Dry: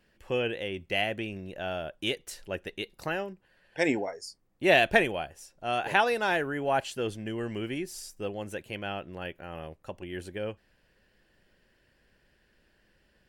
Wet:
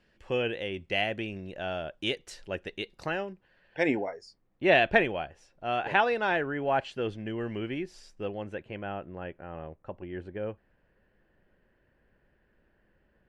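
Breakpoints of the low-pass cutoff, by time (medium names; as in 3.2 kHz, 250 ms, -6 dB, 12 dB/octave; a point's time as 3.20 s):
2.95 s 6.2 kHz
3.92 s 3.2 kHz
8.30 s 3.2 kHz
8.88 s 1.6 kHz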